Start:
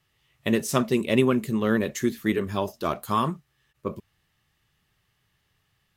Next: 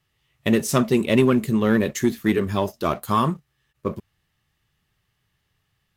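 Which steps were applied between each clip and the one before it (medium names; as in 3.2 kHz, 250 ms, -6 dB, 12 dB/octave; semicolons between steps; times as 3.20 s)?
bass shelf 210 Hz +3 dB; waveshaping leveller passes 1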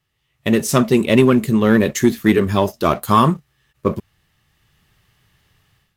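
level rider gain up to 13 dB; trim -1 dB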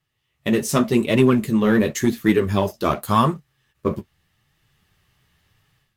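flange 0.87 Hz, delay 5.9 ms, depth 9.4 ms, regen -26%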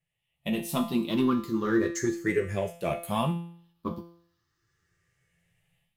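drifting ripple filter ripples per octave 0.5, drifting +0.36 Hz, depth 13 dB; feedback comb 170 Hz, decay 0.59 s, harmonics all, mix 80%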